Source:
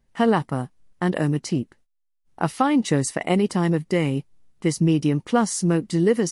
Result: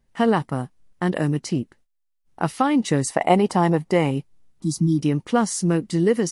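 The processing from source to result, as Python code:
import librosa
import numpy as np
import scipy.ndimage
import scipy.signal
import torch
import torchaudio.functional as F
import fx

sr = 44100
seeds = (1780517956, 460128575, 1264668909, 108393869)

y = fx.peak_eq(x, sr, hz=800.0, db=11.0, octaves=1.0, at=(3.1, 4.11))
y = fx.spec_repair(y, sr, seeds[0], start_s=4.64, length_s=0.32, low_hz=330.0, high_hz=3200.0, source='before')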